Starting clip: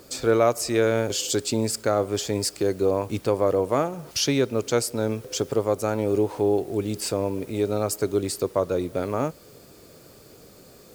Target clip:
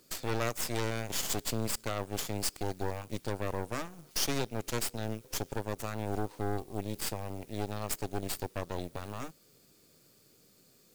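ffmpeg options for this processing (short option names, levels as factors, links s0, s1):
-af "highpass=140,equalizer=f=670:t=o:w=2.6:g=-10.5,aeval=exprs='0.224*(cos(1*acos(clip(val(0)/0.224,-1,1)))-cos(1*PI/2))+0.0891*(cos(2*acos(clip(val(0)/0.224,-1,1)))-cos(2*PI/2))+0.00891*(cos(7*acos(clip(val(0)/0.224,-1,1)))-cos(7*PI/2))+0.0631*(cos(8*acos(clip(val(0)/0.224,-1,1)))-cos(8*PI/2))':c=same,volume=0.447"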